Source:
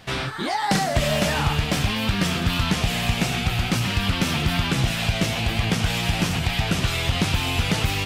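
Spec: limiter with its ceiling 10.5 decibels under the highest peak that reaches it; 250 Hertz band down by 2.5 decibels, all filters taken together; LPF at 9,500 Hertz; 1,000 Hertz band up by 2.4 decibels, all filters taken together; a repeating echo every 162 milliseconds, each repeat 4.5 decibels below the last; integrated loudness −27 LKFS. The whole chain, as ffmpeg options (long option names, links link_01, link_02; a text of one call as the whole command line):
ffmpeg -i in.wav -af "lowpass=9500,equalizer=frequency=250:width_type=o:gain=-4,equalizer=frequency=1000:width_type=o:gain=3.5,alimiter=limit=-21dB:level=0:latency=1,aecho=1:1:162|324|486|648|810|972|1134|1296|1458:0.596|0.357|0.214|0.129|0.0772|0.0463|0.0278|0.0167|0.01" out.wav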